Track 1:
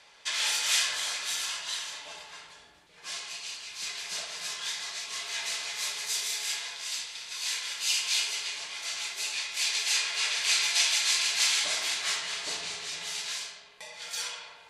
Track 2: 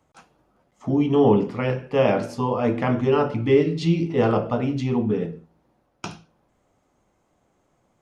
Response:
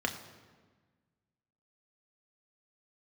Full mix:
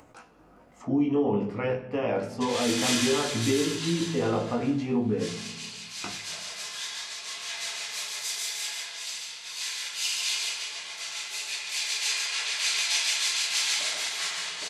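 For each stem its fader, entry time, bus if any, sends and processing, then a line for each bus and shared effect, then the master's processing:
-8.5 dB, 2.15 s, no send, echo send -3.5 dB, AGC gain up to 6.5 dB
-4.5 dB, 0.00 s, send -10 dB, no echo send, limiter -14.5 dBFS, peak gain reduction 7.5 dB; chorus 0.54 Hz, delay 17.5 ms, depth 3.8 ms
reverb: on, RT60 1.4 s, pre-delay 3 ms
echo: echo 0.143 s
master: upward compressor, threshold -42 dBFS

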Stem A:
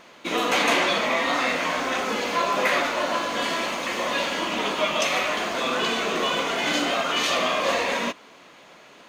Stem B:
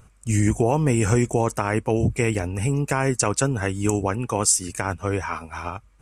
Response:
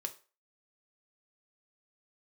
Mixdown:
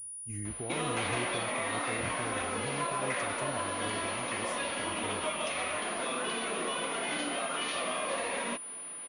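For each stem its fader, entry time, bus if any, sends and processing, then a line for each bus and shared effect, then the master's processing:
-3.0 dB, 0.45 s, no send, compressor 3:1, threshold -30 dBFS, peak gain reduction 10 dB
-20.0 dB, 0.00 s, no send, dry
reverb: off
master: pulse-width modulation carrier 9700 Hz

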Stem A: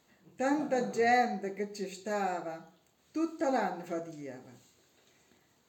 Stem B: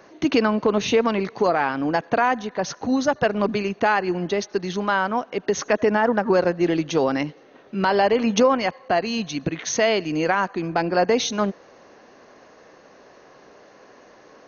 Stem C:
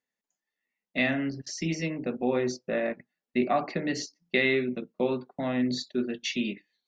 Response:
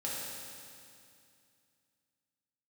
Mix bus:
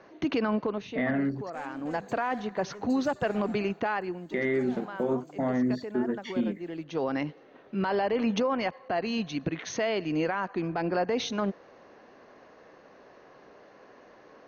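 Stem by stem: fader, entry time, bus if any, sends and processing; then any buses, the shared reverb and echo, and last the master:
-6.5 dB, 1.15 s, no send, limiter -23.5 dBFS, peak gain reduction 7.5 dB; soft clip -33.5 dBFS, distortion -10 dB
-4.0 dB, 0.00 s, no send, Bessel low-pass 3400 Hz, order 2; auto duck -15 dB, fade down 0.40 s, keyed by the third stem
+2.5 dB, 0.00 s, muted 1.5–4.33, no send, polynomial smoothing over 41 samples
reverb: off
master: limiter -19 dBFS, peak gain reduction 7.5 dB

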